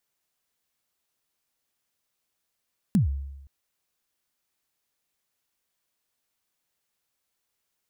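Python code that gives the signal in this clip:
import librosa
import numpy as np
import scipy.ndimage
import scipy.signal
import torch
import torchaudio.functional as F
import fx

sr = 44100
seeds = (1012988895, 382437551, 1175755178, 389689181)

y = fx.drum_kick(sr, seeds[0], length_s=0.52, level_db=-15, start_hz=230.0, end_hz=69.0, sweep_ms=125.0, decay_s=0.98, click=True)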